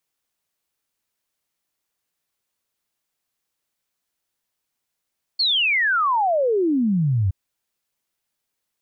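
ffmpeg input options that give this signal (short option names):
-f lavfi -i "aevalsrc='0.15*clip(min(t,1.92-t)/0.01,0,1)*sin(2*PI*4500*1.92/log(89/4500)*(exp(log(89/4500)*t/1.92)-1))':d=1.92:s=44100"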